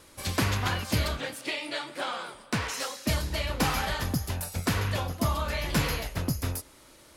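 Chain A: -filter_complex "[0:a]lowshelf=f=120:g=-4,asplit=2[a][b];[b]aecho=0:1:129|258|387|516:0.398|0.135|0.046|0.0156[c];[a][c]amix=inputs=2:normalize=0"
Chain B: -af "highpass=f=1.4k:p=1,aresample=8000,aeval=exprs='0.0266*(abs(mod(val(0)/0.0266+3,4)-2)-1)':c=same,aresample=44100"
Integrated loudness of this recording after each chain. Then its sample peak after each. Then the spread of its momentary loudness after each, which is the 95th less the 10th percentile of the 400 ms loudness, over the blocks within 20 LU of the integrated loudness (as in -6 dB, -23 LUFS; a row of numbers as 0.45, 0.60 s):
-30.0, -38.5 LUFS; -14.0, -27.5 dBFS; 6, 7 LU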